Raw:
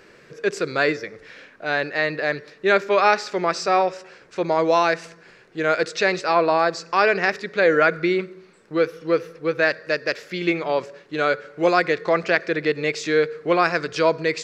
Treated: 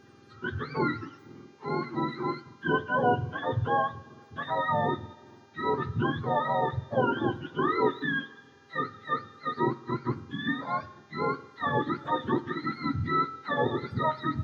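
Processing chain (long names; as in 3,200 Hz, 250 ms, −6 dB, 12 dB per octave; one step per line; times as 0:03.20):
frequency axis turned over on the octave scale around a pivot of 780 Hz
hum with harmonics 400 Hz, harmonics 17, −54 dBFS −5 dB per octave
coupled-rooms reverb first 0.33 s, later 2.5 s, from −18 dB, DRR 13 dB
level −7.5 dB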